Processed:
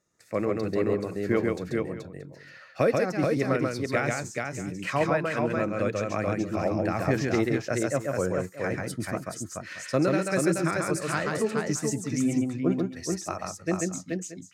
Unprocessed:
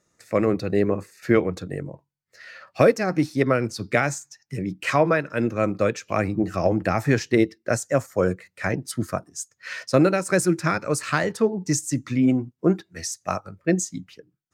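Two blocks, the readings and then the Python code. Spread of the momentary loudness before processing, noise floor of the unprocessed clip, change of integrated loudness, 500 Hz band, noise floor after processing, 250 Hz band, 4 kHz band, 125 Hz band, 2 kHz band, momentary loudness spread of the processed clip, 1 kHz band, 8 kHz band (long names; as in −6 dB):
12 LU, −76 dBFS, −4.5 dB, −4.0 dB, −49 dBFS, −4.0 dB, −4.0 dB, −4.0 dB, −4.0 dB, 9 LU, −4.0 dB, −4.0 dB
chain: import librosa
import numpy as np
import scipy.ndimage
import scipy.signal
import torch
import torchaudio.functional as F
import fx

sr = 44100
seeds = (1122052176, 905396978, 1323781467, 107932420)

y = fx.echo_multitap(x, sr, ms=(137, 429, 628), db=(-3.0, -4.0, -16.5))
y = y * 10.0 ** (-7.0 / 20.0)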